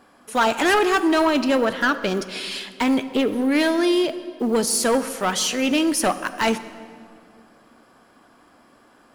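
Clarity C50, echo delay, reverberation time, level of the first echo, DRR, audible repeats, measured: 13.0 dB, no echo audible, 2.2 s, no echo audible, 11.5 dB, no echo audible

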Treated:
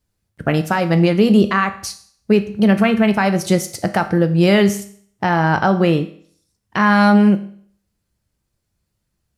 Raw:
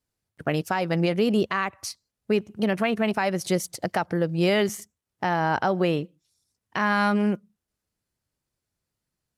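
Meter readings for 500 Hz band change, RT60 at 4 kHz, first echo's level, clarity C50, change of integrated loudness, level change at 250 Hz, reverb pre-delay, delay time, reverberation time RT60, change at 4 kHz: +7.0 dB, 0.55 s, no echo audible, 13.5 dB, +9.0 dB, +11.0 dB, 5 ms, no echo audible, 0.55 s, +6.5 dB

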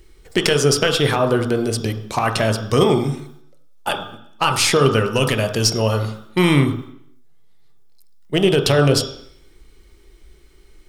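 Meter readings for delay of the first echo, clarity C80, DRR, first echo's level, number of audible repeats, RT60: no echo audible, 10.5 dB, 4.0 dB, no echo audible, no echo audible, 0.70 s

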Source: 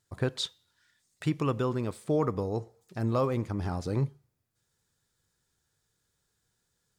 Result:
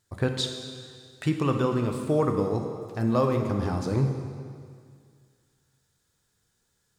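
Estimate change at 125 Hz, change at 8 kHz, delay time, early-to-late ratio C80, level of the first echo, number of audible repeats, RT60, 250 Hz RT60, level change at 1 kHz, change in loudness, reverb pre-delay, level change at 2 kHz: +4.0 dB, +4.5 dB, no echo audible, 6.5 dB, no echo audible, no echo audible, 2.0 s, 2.2 s, +4.5 dB, +4.0 dB, 6 ms, +4.5 dB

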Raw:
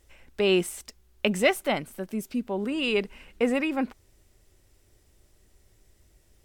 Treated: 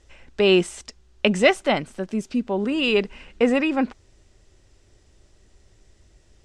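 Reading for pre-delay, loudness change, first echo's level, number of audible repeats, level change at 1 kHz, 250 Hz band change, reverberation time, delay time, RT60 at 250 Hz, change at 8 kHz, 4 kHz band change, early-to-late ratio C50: no reverb audible, +5.5 dB, no echo audible, no echo audible, +5.5 dB, +5.5 dB, no reverb audible, no echo audible, no reverb audible, +0.5 dB, +5.5 dB, no reverb audible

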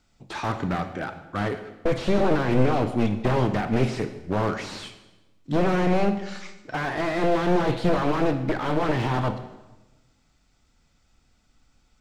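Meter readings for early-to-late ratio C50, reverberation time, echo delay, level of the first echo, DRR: 10.5 dB, 1.1 s, no echo audible, no echo audible, 9.0 dB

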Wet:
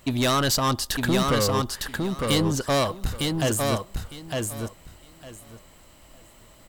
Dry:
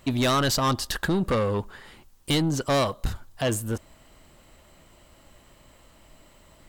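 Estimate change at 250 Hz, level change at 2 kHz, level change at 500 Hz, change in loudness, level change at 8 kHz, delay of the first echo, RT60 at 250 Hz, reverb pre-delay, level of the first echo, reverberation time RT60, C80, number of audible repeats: +1.5 dB, +2.0 dB, +1.5 dB, +1.0 dB, +5.0 dB, 907 ms, no reverb audible, no reverb audible, −3.5 dB, no reverb audible, no reverb audible, 3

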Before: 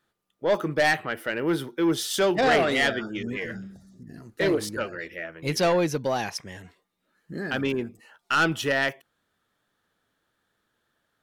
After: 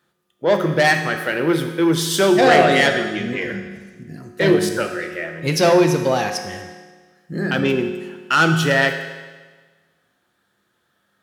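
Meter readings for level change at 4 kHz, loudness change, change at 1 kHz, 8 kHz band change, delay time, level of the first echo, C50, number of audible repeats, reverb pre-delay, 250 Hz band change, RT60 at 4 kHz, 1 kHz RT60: +7.0 dB, +7.5 dB, +8.0 dB, +7.5 dB, no echo audible, no echo audible, 6.5 dB, no echo audible, 5 ms, +8.5 dB, 1.4 s, 1.4 s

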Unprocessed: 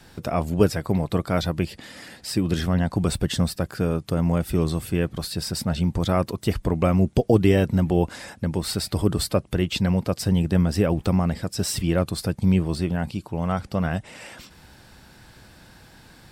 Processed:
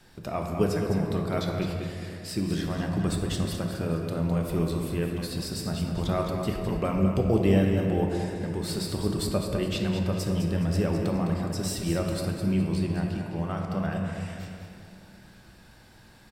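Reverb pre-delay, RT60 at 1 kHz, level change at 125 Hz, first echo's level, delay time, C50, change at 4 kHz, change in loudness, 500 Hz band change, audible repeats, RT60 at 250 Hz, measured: 3 ms, 2.1 s, −4.5 dB, −8.0 dB, 208 ms, 1.5 dB, −5.5 dB, −4.5 dB, −4.0 dB, 2, 3.3 s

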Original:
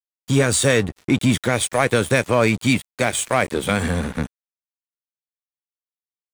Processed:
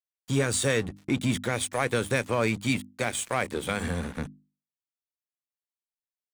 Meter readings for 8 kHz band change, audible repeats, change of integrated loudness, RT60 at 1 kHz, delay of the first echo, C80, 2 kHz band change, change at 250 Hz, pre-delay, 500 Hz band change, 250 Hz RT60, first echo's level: −8.0 dB, no echo audible, −8.5 dB, no reverb audible, no echo audible, no reverb audible, −8.0 dB, −8.5 dB, no reverb audible, −8.5 dB, no reverb audible, no echo audible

